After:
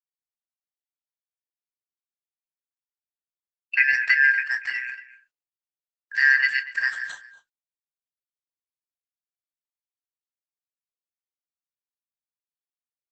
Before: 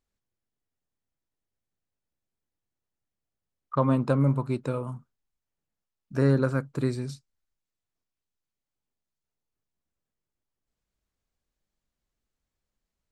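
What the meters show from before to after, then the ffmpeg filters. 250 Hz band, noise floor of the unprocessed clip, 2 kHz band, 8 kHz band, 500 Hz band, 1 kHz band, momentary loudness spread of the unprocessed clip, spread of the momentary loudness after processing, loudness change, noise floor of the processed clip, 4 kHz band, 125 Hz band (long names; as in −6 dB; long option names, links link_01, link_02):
below −40 dB, below −85 dBFS, +24.5 dB, can't be measured, below −30 dB, −11.5 dB, 13 LU, 16 LU, +6.5 dB, below −85 dBFS, +13.0 dB, below −40 dB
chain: -filter_complex "[0:a]afftfilt=real='real(if(lt(b,272),68*(eq(floor(b/68),0)*2+eq(floor(b/68),1)*0+eq(floor(b/68),2)*3+eq(floor(b/68),3)*1)+mod(b,68),b),0)':imag='imag(if(lt(b,272),68*(eq(floor(b/68),0)*2+eq(floor(b/68),1)*0+eq(floor(b/68),2)*3+eq(floor(b/68),3)*1)+mod(b,68),b),0)':win_size=2048:overlap=0.75,asplit=2[link_01][link_02];[link_02]aecho=0:1:16|28:0.316|0.15[link_03];[link_01][link_03]amix=inputs=2:normalize=0,agate=range=-32dB:threshold=-49dB:ratio=16:detection=peak,asplit=2[link_04][link_05];[link_05]adelay=239.1,volume=-16dB,highshelf=frequency=4000:gain=-5.38[link_06];[link_04][link_06]amix=inputs=2:normalize=0,volume=4.5dB" -ar 48000 -c:a libopus -b:a 10k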